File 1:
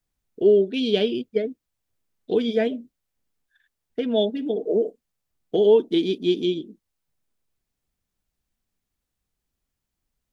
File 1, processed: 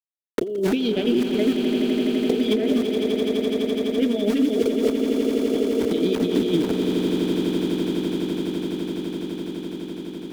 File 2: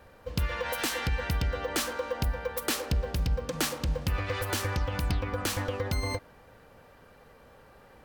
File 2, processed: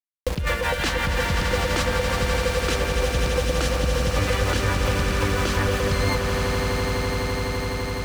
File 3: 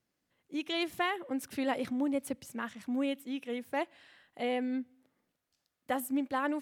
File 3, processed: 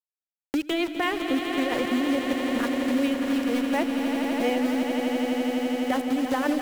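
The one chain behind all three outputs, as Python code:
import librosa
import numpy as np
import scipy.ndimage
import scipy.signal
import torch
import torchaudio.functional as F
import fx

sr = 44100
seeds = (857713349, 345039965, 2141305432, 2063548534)

p1 = fx.env_lowpass(x, sr, base_hz=1500.0, full_db=-22.0)
p2 = np.where(np.abs(p1) >= 10.0 ** (-39.0 / 20.0), p1, 0.0)
p3 = fx.over_compress(p2, sr, threshold_db=-31.0, ratio=-1.0)
p4 = fx.rotary(p3, sr, hz=5.5)
p5 = p4 + fx.echo_swell(p4, sr, ms=84, loudest=8, wet_db=-10.5, dry=0)
p6 = fx.band_squash(p5, sr, depth_pct=70)
y = p6 * 10.0 ** (8.5 / 20.0)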